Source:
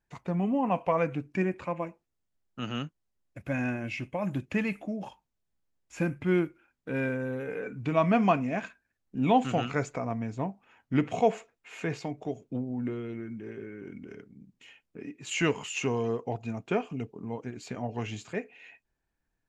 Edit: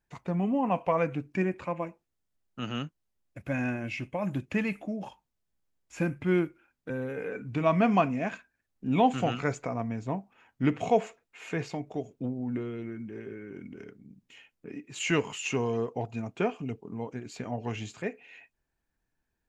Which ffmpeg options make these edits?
ffmpeg -i in.wav -filter_complex "[0:a]asplit=2[link_01][link_02];[link_01]atrim=end=6.902[link_03];[link_02]atrim=start=7.208[link_04];[link_03][link_04]acrossfade=duration=0.004:curve1=hsin:curve2=hsin" out.wav

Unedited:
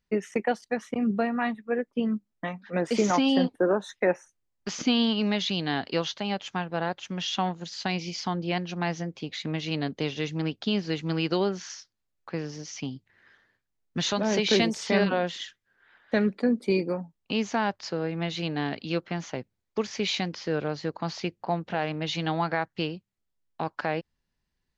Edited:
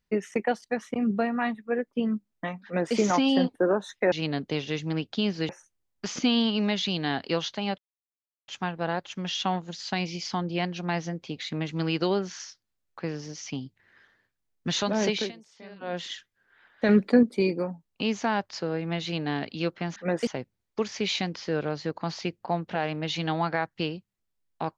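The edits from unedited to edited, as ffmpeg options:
ffmpeg -i in.wav -filter_complex "[0:a]asplit=11[link_01][link_02][link_03][link_04][link_05][link_06][link_07][link_08][link_09][link_10][link_11];[link_01]atrim=end=4.122[link_12];[link_02]atrim=start=9.608:end=10.982[link_13];[link_03]atrim=start=4.118:end=6.41,asetpts=PTS-STARTPTS,afade=type=out:start_time=2.288:duration=0.004:curve=hsin,apad=pad_dur=0.7[link_14];[link_04]atrim=start=6.41:end=9.612,asetpts=PTS-STARTPTS,afade=type=in:duration=0.004:curve=hsin[link_15];[link_05]atrim=start=10.978:end=14.62,asetpts=PTS-STARTPTS,afade=type=out:start_time=3.402:duration=0.24:silence=0.0707946[link_16];[link_06]atrim=start=14.62:end=15.09,asetpts=PTS-STARTPTS,volume=-23dB[link_17];[link_07]atrim=start=15.09:end=16.192,asetpts=PTS-STARTPTS,afade=type=in:duration=0.24:silence=0.0707946[link_18];[link_08]atrim=start=16.188:end=16.532,asetpts=PTS-STARTPTS,volume=5.5dB[link_19];[link_09]atrim=start=16.528:end=19.262[link_20];[link_10]atrim=start=2.638:end=2.952[link_21];[link_11]atrim=start=19.258[link_22];[link_12][link_13]acrossfade=duration=0.004:curve1=hsin:curve2=hsin[link_23];[link_14][link_15]concat=n=2:v=0:a=1[link_24];[link_23][link_24]acrossfade=duration=0.004:curve1=hsin:curve2=hsin[link_25];[link_16][link_17][link_18]concat=n=3:v=0:a=1[link_26];[link_25][link_26]acrossfade=duration=0.004:curve1=hsin:curve2=hsin[link_27];[link_27][link_19]acrossfade=duration=0.004:curve1=hsin:curve2=hsin[link_28];[link_28][link_20]acrossfade=duration=0.004:curve1=hsin:curve2=hsin[link_29];[link_29][link_21]acrossfade=duration=0.004:curve1=hsin:curve2=hsin[link_30];[link_30][link_22]acrossfade=duration=0.004:curve1=hsin:curve2=hsin" out.wav

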